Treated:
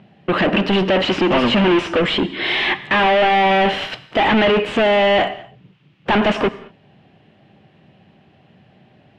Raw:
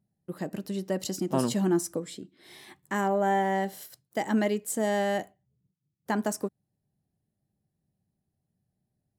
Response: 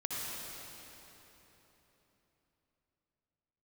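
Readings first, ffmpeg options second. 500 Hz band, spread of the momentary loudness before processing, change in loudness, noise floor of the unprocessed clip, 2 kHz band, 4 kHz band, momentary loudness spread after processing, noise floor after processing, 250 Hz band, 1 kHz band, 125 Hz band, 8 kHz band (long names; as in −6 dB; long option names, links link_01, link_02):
+13.0 dB, 17 LU, +12.5 dB, −82 dBFS, +18.5 dB, +22.0 dB, 9 LU, −54 dBFS, +10.5 dB, +13.5 dB, +10.0 dB, can't be measured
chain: -filter_complex "[0:a]asplit=2[link_01][link_02];[link_02]highpass=frequency=720:poles=1,volume=42dB,asoftclip=type=tanh:threshold=-12dB[link_03];[link_01][link_03]amix=inputs=2:normalize=0,lowpass=frequency=1300:poles=1,volume=-6dB,lowpass=frequency=2900:width_type=q:width=3.8,asplit=2[link_04][link_05];[1:a]atrim=start_sample=2205,afade=type=out:start_time=0.28:duration=0.01,atrim=end_sample=12789[link_06];[link_05][link_06]afir=irnorm=-1:irlink=0,volume=-15dB[link_07];[link_04][link_07]amix=inputs=2:normalize=0,volume=3dB"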